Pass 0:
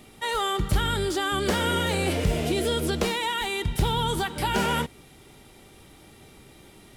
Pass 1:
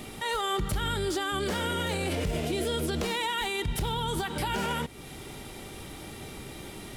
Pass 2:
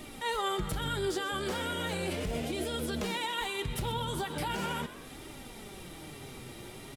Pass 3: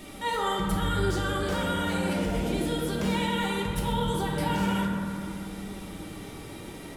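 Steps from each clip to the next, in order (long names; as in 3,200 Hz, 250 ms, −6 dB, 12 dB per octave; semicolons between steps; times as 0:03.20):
downward compressor 2 to 1, threshold −38 dBFS, peak gain reduction 11 dB; brickwall limiter −30 dBFS, peak gain reduction 8.5 dB; level +8.5 dB
flanger 0.38 Hz, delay 3.1 ms, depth 5.6 ms, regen +45%; echo with shifted repeats 126 ms, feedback 50%, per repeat +88 Hz, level −14.5 dB
convolution reverb RT60 2.3 s, pre-delay 5 ms, DRR −2 dB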